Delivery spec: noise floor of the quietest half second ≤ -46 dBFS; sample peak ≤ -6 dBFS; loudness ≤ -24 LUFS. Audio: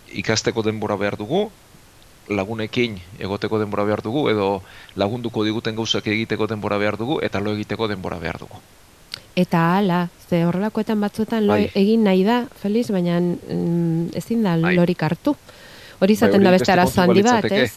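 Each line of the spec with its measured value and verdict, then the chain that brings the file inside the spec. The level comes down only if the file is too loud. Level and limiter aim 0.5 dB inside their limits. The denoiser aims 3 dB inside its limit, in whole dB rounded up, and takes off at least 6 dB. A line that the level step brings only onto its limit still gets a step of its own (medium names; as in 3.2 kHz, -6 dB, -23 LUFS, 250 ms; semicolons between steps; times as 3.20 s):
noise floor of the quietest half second -49 dBFS: pass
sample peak -2.5 dBFS: fail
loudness -20.0 LUFS: fail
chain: trim -4.5 dB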